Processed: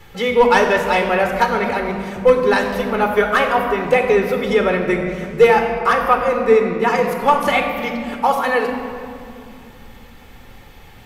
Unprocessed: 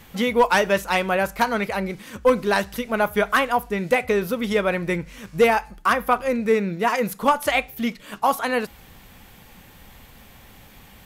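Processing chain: treble shelf 5.8 kHz -4.5 dB; reverberation RT60 2.6 s, pre-delay 4 ms, DRR 3.5 dB; trim -2.5 dB

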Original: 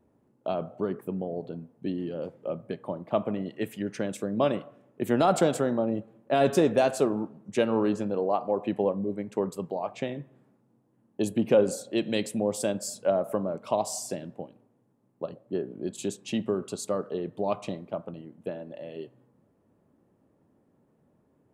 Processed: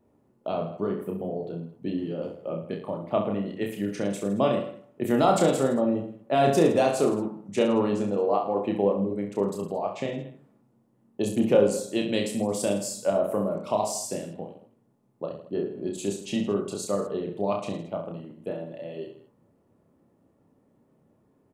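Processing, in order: band-stop 1.6 kHz, Q 15; on a send: reverse bouncing-ball echo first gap 30 ms, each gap 1.2×, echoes 5

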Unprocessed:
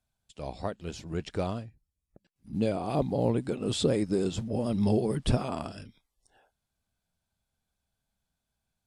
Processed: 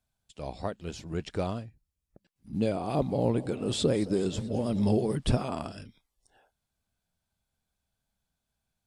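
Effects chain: 2.81–5.16 s: modulated delay 218 ms, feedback 65%, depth 187 cents, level -18 dB

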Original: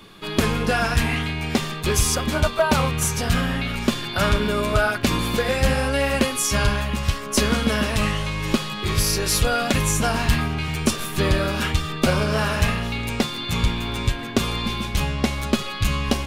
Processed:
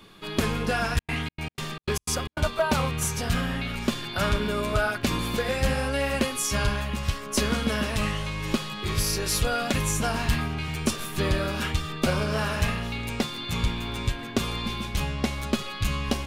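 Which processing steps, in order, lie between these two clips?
0.94–2.41 s: trance gate ".xx.x.xx.x" 152 bpm -60 dB; trim -5 dB

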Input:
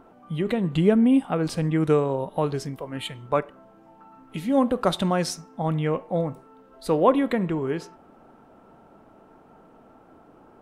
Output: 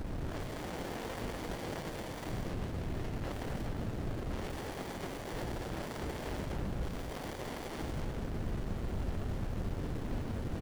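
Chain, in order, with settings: frequency axis rescaled in octaves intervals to 88%; tilt EQ -4 dB/octave; waveshaping leveller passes 3; 2.29–3.24 s: ladder band-pass 2.4 kHz, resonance 50%; added noise brown -28 dBFS; wavefolder -30.5 dBFS; loudspeakers at several distances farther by 29 m -7 dB, 60 m -11 dB, 83 m -3 dB; sliding maximum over 33 samples; trim -2 dB

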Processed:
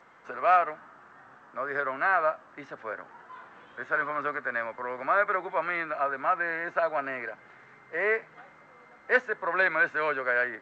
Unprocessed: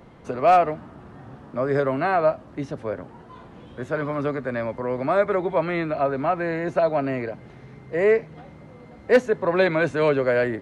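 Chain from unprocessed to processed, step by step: in parallel at 0 dB: gain riding within 4 dB 2 s; on the sum: band-pass filter 1.5 kHz, Q 2.2; trim -2 dB; G.722 64 kbps 16 kHz

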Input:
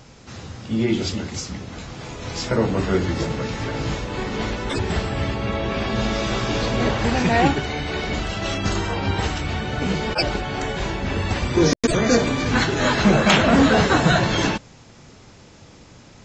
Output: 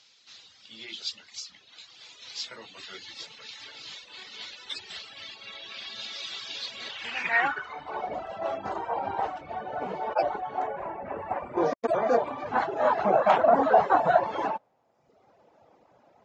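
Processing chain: band-pass sweep 3.9 kHz -> 700 Hz, 6.88–8.11 s; dynamic bell 1 kHz, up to +7 dB, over -39 dBFS, Q 0.92; reverb removal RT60 1.1 s; 10.67–11.57 s: high-order bell 4.6 kHz -15.5 dB 1.3 oct

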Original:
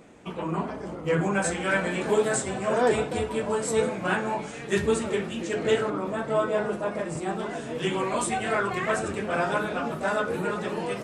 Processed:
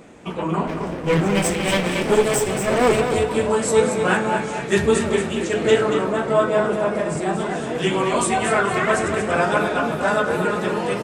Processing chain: 0.67–3.01 s: comb filter that takes the minimum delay 0.36 ms; feedback delay 231 ms, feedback 38%, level -7.5 dB; trim +6.5 dB

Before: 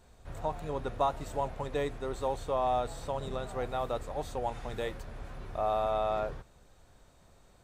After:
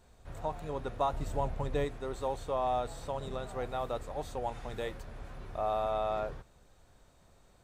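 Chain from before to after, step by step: 1.11–1.85 s: bass shelf 210 Hz +9 dB; trim -2 dB

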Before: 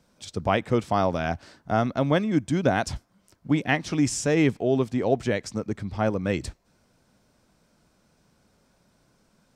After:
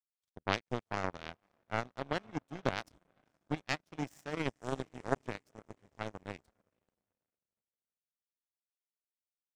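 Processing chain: echo that smears into a reverb 494 ms, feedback 64%, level -11.5 dB; power-law waveshaper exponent 3; trim -2 dB

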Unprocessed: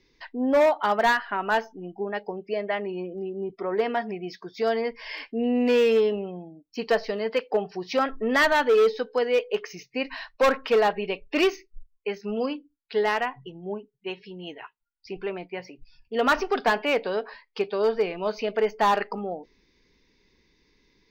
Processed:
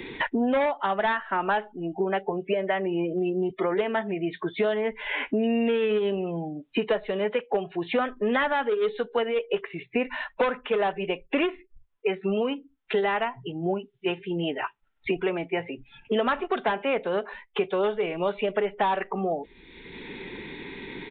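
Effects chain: formant-preserving pitch shift -1 st; resampled via 8 kHz; three bands compressed up and down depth 100%; trim -1 dB

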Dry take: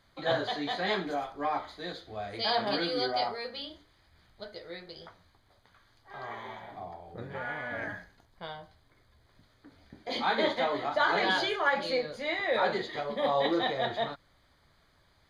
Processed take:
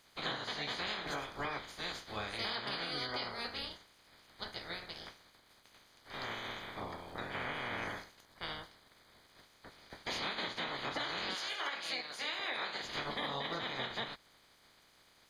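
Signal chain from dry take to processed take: spectral peaks clipped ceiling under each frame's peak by 23 dB; 11.34–12.82 s: high-pass 970 Hz -> 440 Hz 6 dB/octave; compression 12:1, threshold -35 dBFS, peak gain reduction 13.5 dB

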